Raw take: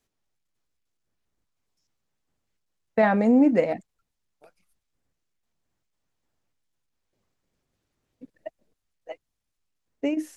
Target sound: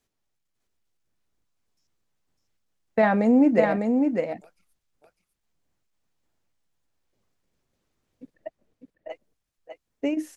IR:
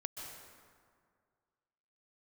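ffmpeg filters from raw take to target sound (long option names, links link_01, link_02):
-filter_complex "[0:a]asettb=1/sr,asplit=3[link_01][link_02][link_03];[link_01]atrim=end=8.344[link_04];[link_02]atrim=start=8.34:end=9.1,asetpts=PTS-STARTPTS,afade=type=in:duration=0.004:curve=qsin,afade=type=out:start_time=0.756:duration=0.004:curve=qsin,lowpass=2500[link_05];[link_03]atrim=start=9.096[link_06];[link_04][link_05]acrossfade=duration=0.004:curve1=hsin:curve2=qsin[link_07];[link_07][link_06]acrossfade=duration=0.004:curve1=qsin:curve2=hsin,aecho=1:1:602:0.596"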